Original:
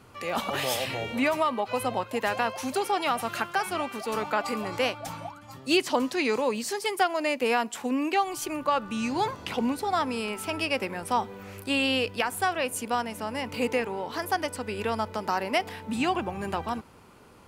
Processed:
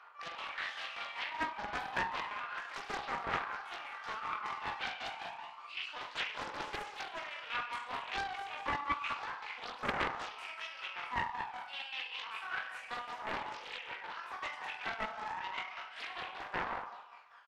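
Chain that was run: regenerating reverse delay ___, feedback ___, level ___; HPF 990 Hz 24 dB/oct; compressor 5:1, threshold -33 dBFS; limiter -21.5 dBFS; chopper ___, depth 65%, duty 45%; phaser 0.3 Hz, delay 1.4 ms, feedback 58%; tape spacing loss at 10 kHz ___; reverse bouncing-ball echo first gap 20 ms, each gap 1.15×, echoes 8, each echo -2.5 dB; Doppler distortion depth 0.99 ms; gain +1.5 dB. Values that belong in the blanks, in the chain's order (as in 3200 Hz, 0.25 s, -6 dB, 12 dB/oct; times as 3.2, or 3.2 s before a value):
0.105 s, 68%, -9 dB, 5.2 Hz, 35 dB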